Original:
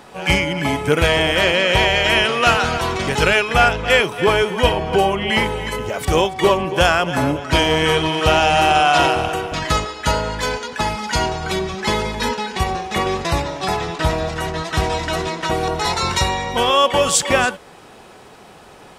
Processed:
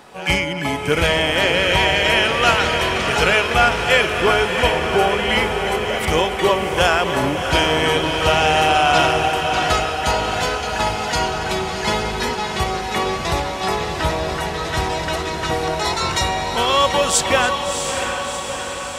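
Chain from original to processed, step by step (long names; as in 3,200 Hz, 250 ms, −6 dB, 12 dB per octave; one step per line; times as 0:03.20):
low-shelf EQ 400 Hz −3 dB
on a send: feedback delay with all-pass diffusion 688 ms, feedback 64%, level −6 dB
on the sum: level −1 dB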